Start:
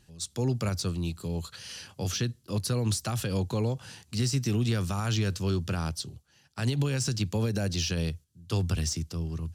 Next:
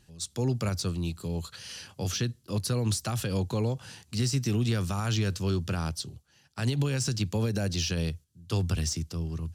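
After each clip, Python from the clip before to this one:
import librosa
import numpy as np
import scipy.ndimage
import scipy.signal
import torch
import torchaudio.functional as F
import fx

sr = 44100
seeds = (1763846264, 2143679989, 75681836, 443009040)

y = x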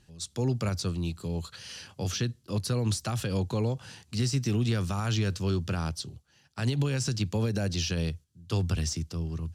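y = fx.high_shelf(x, sr, hz=11000.0, db=-9.0)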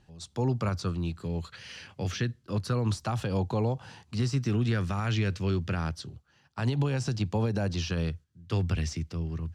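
y = fx.lowpass(x, sr, hz=2800.0, slope=6)
y = fx.bell_lfo(y, sr, hz=0.28, low_hz=780.0, high_hz=2200.0, db=7)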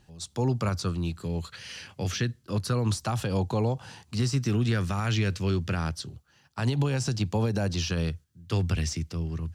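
y = fx.high_shelf(x, sr, hz=6700.0, db=10.0)
y = y * librosa.db_to_amplitude(1.5)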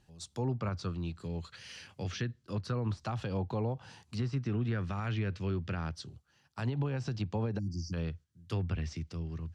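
y = fx.spec_erase(x, sr, start_s=7.59, length_s=0.34, low_hz=350.0, high_hz=4500.0)
y = fx.env_lowpass_down(y, sr, base_hz=2200.0, full_db=-22.0)
y = y * librosa.db_to_amplitude(-7.0)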